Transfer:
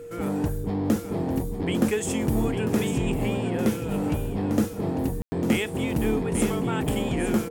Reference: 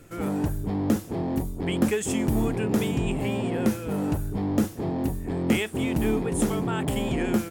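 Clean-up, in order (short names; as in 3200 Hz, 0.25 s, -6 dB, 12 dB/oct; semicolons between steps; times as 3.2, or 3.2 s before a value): notch 470 Hz, Q 30; room tone fill 5.22–5.32; inverse comb 0.849 s -9 dB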